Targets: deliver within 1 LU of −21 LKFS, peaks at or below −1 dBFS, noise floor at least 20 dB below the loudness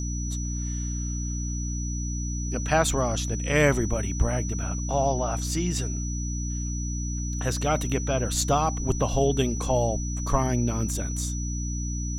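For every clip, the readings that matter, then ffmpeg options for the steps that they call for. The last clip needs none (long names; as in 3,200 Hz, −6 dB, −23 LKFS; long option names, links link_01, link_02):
mains hum 60 Hz; hum harmonics up to 300 Hz; level of the hum −27 dBFS; interfering tone 5,900 Hz; level of the tone −36 dBFS; integrated loudness −27.0 LKFS; sample peak −8.0 dBFS; target loudness −21.0 LKFS
→ -af "bandreject=frequency=60:width_type=h:width=6,bandreject=frequency=120:width_type=h:width=6,bandreject=frequency=180:width_type=h:width=6,bandreject=frequency=240:width_type=h:width=6,bandreject=frequency=300:width_type=h:width=6"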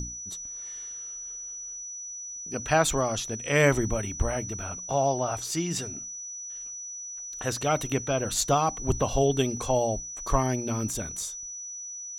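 mains hum none found; interfering tone 5,900 Hz; level of the tone −36 dBFS
→ -af "bandreject=frequency=5900:width=30"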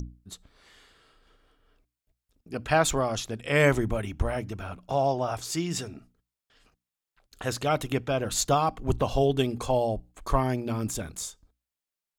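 interfering tone none found; integrated loudness −27.5 LKFS; sample peak −8.0 dBFS; target loudness −21.0 LKFS
→ -af "volume=6.5dB"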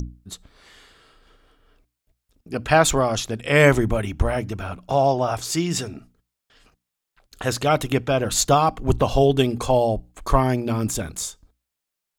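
integrated loudness −21.0 LKFS; sample peak −1.5 dBFS; background noise floor −83 dBFS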